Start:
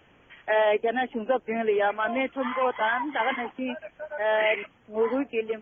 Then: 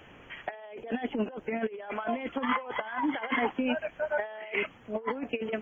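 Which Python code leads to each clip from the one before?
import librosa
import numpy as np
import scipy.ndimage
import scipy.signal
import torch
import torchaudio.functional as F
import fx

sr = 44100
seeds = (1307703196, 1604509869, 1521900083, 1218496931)

y = fx.over_compress(x, sr, threshold_db=-31.0, ratio=-0.5)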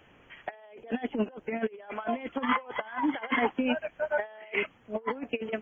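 y = fx.upward_expand(x, sr, threshold_db=-42.0, expansion=1.5)
y = F.gain(torch.from_numpy(y), 2.5).numpy()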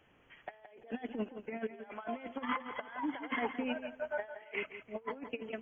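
y = fx.echo_feedback(x, sr, ms=169, feedback_pct=27, wet_db=-11)
y = F.gain(torch.from_numpy(y), -8.5).numpy()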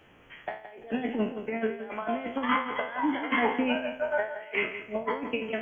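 y = fx.spec_trails(x, sr, decay_s=0.42)
y = F.gain(torch.from_numpy(y), 8.0).numpy()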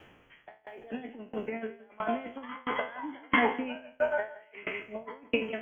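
y = fx.tremolo_decay(x, sr, direction='decaying', hz=1.5, depth_db=26)
y = F.gain(torch.from_numpy(y), 4.0).numpy()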